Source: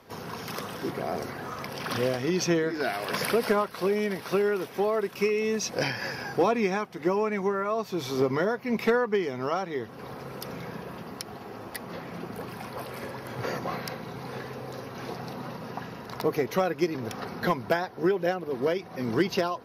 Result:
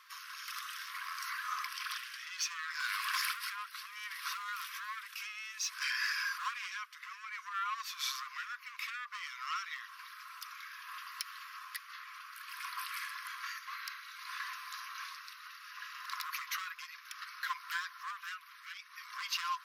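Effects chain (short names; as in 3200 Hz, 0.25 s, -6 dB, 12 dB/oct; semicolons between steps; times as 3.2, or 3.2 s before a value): in parallel at 0 dB: limiter -24.5 dBFS, peak gain reduction 11.5 dB; on the sum: soft clip -20.5 dBFS, distortion -12 dB; rotary speaker horn 0.6 Hz; overloaded stage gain 23.5 dB; brick-wall FIR high-pass 1000 Hz; gain -2 dB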